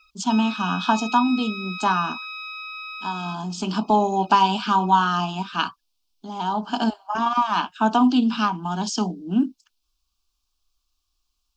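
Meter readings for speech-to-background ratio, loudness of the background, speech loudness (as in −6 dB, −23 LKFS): 10.0 dB, −32.5 LKFS, −22.5 LKFS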